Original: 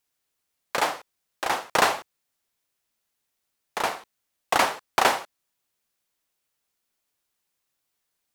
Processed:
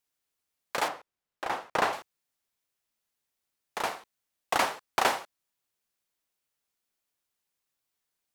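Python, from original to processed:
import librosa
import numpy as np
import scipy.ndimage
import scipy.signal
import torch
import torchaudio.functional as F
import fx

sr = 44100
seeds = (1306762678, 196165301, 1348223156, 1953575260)

y = fx.high_shelf(x, sr, hz=3700.0, db=-11.0, at=(0.88, 1.93))
y = y * 10.0 ** (-5.0 / 20.0)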